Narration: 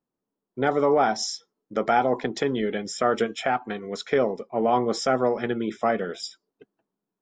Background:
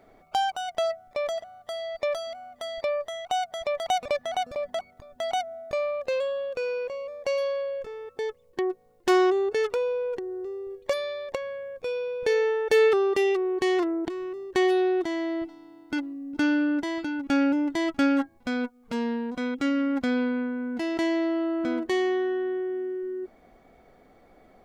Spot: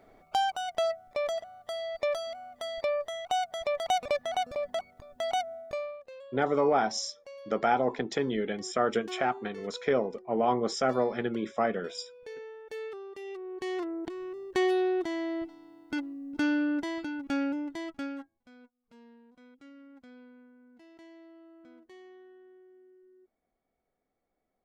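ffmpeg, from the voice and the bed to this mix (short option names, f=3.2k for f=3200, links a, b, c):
-filter_complex "[0:a]adelay=5750,volume=-4.5dB[a];[1:a]volume=14dB,afade=t=out:st=5.51:d=0.54:silence=0.125893,afade=t=in:st=13.2:d=1.28:silence=0.158489,afade=t=out:st=16.84:d=1.6:silence=0.0707946[b];[a][b]amix=inputs=2:normalize=0"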